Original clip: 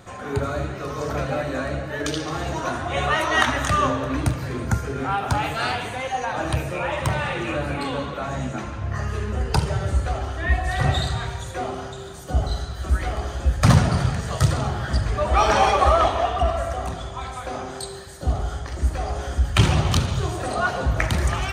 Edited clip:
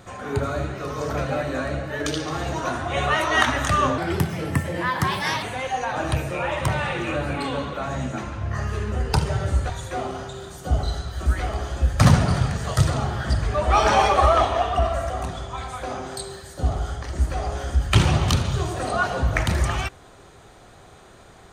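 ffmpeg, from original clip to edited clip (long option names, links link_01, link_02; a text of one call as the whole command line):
ffmpeg -i in.wav -filter_complex "[0:a]asplit=4[link_01][link_02][link_03][link_04];[link_01]atrim=end=3.984[link_05];[link_02]atrim=start=3.98:end=5.83,asetpts=PTS-STARTPTS,asetrate=56448,aresample=44100,atrim=end_sample=63738,asetpts=PTS-STARTPTS[link_06];[link_03]atrim=start=5.826:end=10.102[link_07];[link_04]atrim=start=11.328[link_08];[link_05][link_06]acrossfade=duration=0.004:curve1=hsin:curve2=hsin[link_09];[link_09][link_07]acrossfade=duration=0.004:curve1=hsin:curve2=hsin[link_10];[link_10][link_08]acrossfade=duration=0.004:curve1=hsin:curve2=hsin" out.wav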